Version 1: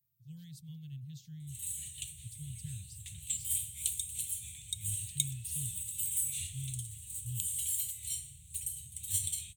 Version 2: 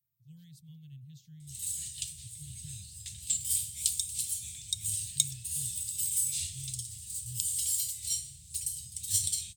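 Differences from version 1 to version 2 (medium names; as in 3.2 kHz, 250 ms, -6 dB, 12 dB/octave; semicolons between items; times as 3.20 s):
speech -4.0 dB; background: remove static phaser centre 1.4 kHz, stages 6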